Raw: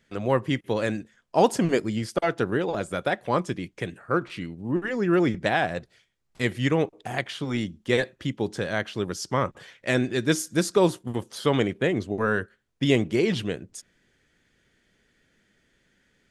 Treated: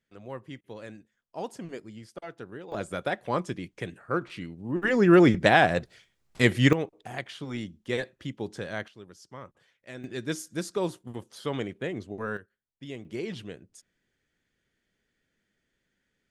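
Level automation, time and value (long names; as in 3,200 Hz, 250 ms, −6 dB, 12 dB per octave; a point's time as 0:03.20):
−16.5 dB
from 0:02.72 −4 dB
from 0:04.83 +4.5 dB
from 0:06.73 −7 dB
from 0:08.88 −19 dB
from 0:10.04 −9 dB
from 0:12.37 −19 dB
from 0:13.05 −11.5 dB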